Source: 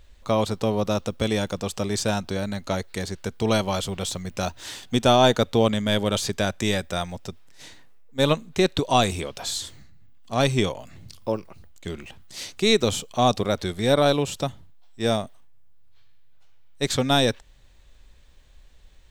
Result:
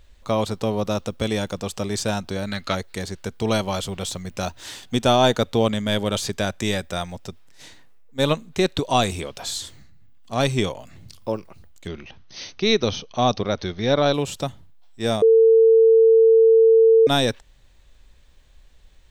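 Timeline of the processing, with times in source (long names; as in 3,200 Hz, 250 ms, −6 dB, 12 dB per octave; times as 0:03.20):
0:02.47–0:02.75: gain on a spectral selection 1,100–5,400 Hz +8 dB
0:11.87–0:14.14: linear-phase brick-wall low-pass 6,400 Hz
0:15.22–0:17.07: beep over 450 Hz −10 dBFS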